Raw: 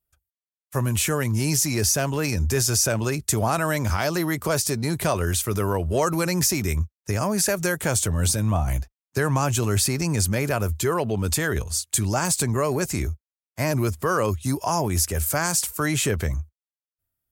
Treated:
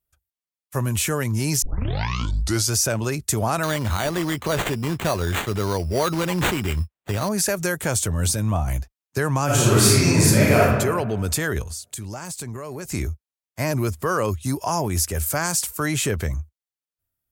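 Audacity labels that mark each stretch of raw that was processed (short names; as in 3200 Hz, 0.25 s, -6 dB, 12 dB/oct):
1.620000	1.620000	tape start 1.11 s
3.630000	7.290000	sample-rate reducer 5200 Hz
9.450000	10.620000	reverb throw, RT60 1.4 s, DRR -8 dB
11.620000	12.920000	compressor, threshold -29 dBFS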